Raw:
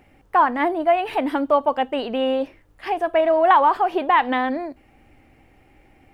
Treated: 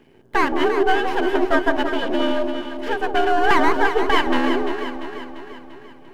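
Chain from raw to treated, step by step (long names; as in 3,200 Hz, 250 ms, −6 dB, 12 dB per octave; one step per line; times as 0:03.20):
frequency shifter +76 Hz
half-wave rectification
hollow resonant body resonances 260/390/1,600/3,000 Hz, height 12 dB, ringing for 40 ms
on a send: delay that swaps between a low-pass and a high-pass 172 ms, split 900 Hz, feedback 73%, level −5 dB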